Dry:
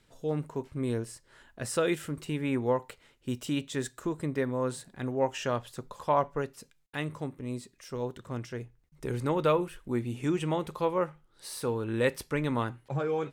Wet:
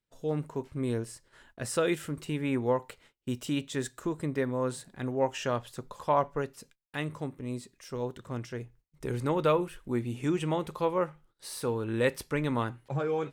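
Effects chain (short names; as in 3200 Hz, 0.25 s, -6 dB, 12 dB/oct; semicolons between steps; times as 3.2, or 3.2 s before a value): gate -58 dBFS, range -23 dB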